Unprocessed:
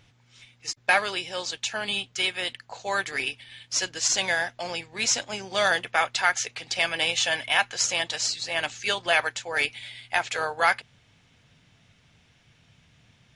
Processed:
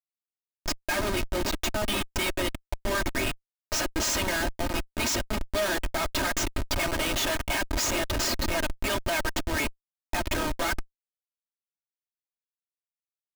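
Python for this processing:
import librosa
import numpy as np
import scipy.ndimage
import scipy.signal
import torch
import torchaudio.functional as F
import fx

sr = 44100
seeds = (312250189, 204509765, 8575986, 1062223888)

y = fx.high_shelf(x, sr, hz=9000.0, db=6.0)
y = fx.schmitt(y, sr, flips_db=-28.0)
y = y + 0.64 * np.pad(y, (int(3.2 * sr / 1000.0), 0))[:len(y)]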